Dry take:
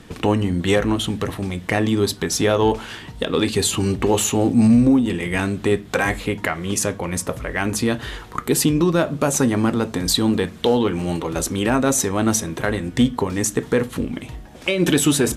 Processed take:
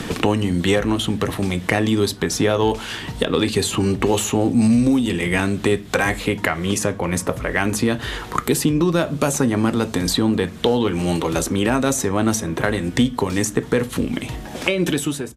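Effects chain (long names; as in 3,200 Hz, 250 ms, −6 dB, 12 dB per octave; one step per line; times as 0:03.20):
fade-out on the ending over 0.89 s
multiband upward and downward compressor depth 70%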